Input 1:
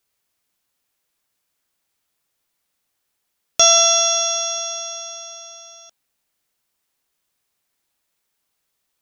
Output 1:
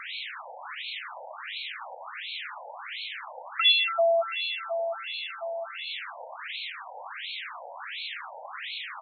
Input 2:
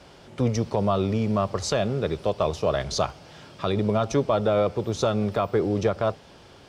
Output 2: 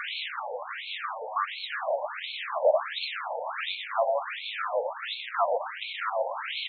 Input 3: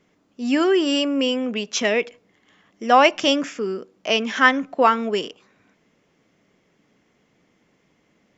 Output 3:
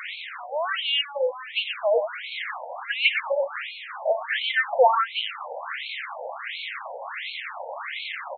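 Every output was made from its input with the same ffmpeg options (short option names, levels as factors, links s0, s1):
-filter_complex "[0:a]aeval=exprs='val(0)+0.5*0.0944*sgn(val(0))':c=same,asplit=2[s0][s1];[s1]aecho=0:1:62|124:0.141|0.473[s2];[s0][s2]amix=inputs=2:normalize=0,afftfilt=real='re*between(b*sr/1024,660*pow(3100/660,0.5+0.5*sin(2*PI*1.4*pts/sr))/1.41,660*pow(3100/660,0.5+0.5*sin(2*PI*1.4*pts/sr))*1.41)':imag='im*between(b*sr/1024,660*pow(3100/660,0.5+0.5*sin(2*PI*1.4*pts/sr))/1.41,660*pow(3100/660,0.5+0.5*sin(2*PI*1.4*pts/sr))*1.41)':win_size=1024:overlap=0.75"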